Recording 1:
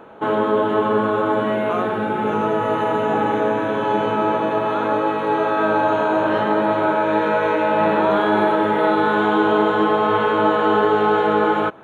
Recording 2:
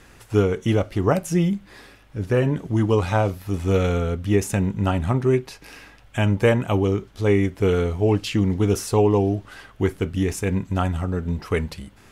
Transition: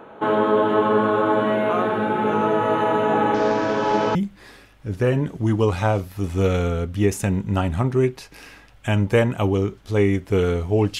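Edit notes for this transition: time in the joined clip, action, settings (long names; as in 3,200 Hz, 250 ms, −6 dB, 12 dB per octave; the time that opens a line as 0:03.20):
recording 1
0:03.34–0:04.15: variable-slope delta modulation 32 kbit/s
0:04.15: continue with recording 2 from 0:01.45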